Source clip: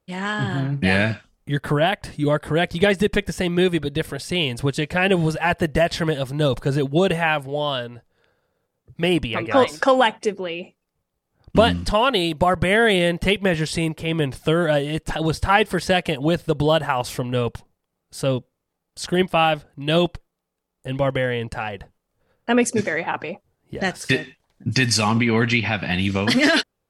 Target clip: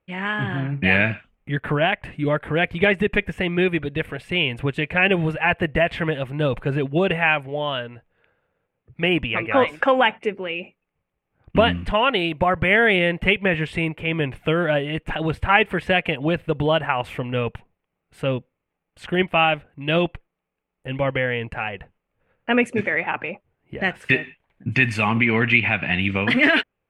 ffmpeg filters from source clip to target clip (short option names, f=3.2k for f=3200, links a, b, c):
-af "highshelf=f=3.6k:t=q:w=3:g=-13,volume=-2dB"